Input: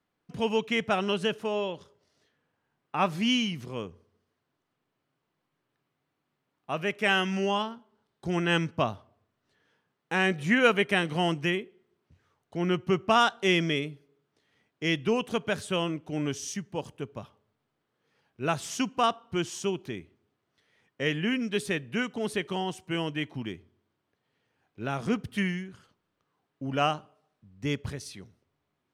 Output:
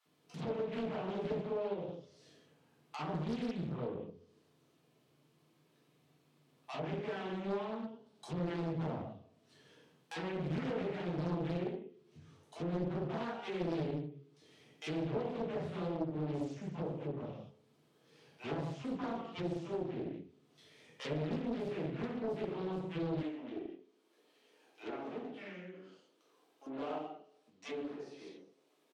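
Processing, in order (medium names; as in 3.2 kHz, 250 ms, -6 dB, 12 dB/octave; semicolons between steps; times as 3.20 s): valve stage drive 32 dB, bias 0.35; bands offset in time highs, lows 50 ms, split 760 Hz; gated-style reverb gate 250 ms falling, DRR -6 dB; compression 1.5:1, threshold -59 dBFS, peak gain reduction 12.5 dB; peaking EQ 1.6 kHz -8 dB 1.2 oct; low-pass that closes with the level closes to 1.6 kHz, closed at -41 dBFS; high-pass 120 Hz 24 dB/octave, from 23.23 s 290 Hz; loudspeaker Doppler distortion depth 0.84 ms; trim +5.5 dB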